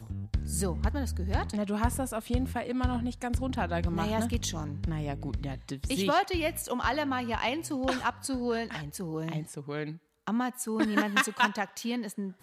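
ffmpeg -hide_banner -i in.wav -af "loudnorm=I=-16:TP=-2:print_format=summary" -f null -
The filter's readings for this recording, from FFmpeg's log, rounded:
Input Integrated:    -31.0 LUFS
Input True Peak:     -11.5 dBTP
Input LRA:             2.0 LU
Input Threshold:     -41.1 LUFS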